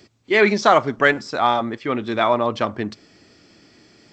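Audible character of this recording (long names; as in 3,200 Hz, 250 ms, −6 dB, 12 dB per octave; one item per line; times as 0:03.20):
background noise floor −57 dBFS
spectral slope −2.5 dB per octave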